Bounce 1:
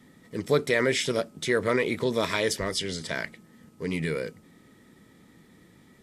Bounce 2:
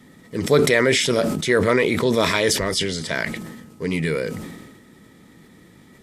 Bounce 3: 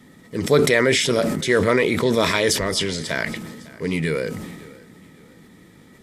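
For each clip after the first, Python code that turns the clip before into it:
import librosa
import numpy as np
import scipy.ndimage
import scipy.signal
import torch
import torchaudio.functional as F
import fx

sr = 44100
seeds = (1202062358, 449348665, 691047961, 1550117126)

y1 = fx.sustainer(x, sr, db_per_s=42.0)
y1 = y1 * 10.0 ** (6.0 / 20.0)
y2 = fx.echo_feedback(y1, sr, ms=552, feedback_pct=36, wet_db=-21.5)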